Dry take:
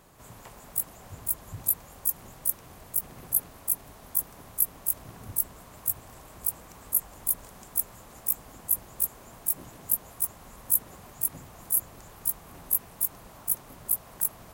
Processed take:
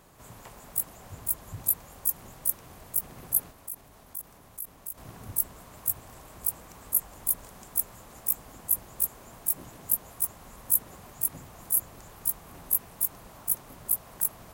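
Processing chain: 3.51–4.98 s: level held to a coarse grid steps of 18 dB

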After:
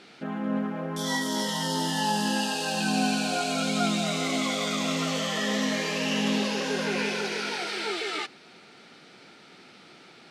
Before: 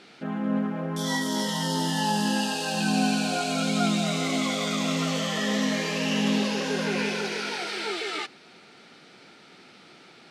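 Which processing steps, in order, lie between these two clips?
dynamic bell 120 Hz, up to -5 dB, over -38 dBFS, Q 0.79

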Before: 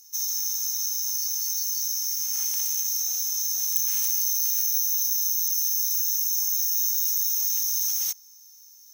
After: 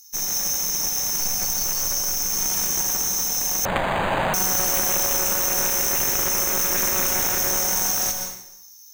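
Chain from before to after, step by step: tracing distortion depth 0.058 ms; 1.20–2.25 s: bass shelf 62 Hz +11.5 dB; plate-style reverb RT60 0.78 s, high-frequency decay 0.9×, pre-delay 115 ms, DRR 3.5 dB; 3.65–4.34 s: decimation joined by straight lines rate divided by 8×; trim +3 dB

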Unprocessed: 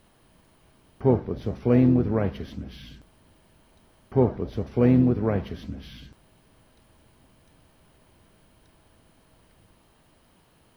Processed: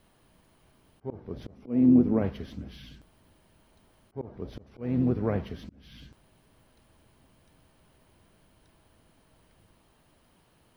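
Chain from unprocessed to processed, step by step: vibrato 12 Hz 40 cents; slow attack 330 ms; 1.55–2.22 s: fifteen-band graphic EQ 100 Hz -7 dB, 250 Hz +9 dB, 1.6 kHz -7 dB, 4 kHz -7 dB; trim -3.5 dB

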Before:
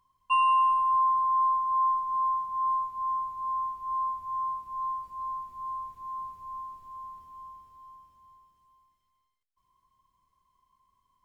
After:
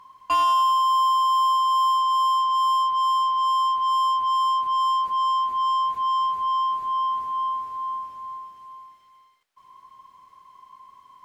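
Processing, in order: overdrive pedal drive 29 dB, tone 2 kHz, clips at -16 dBFS; trim +1.5 dB

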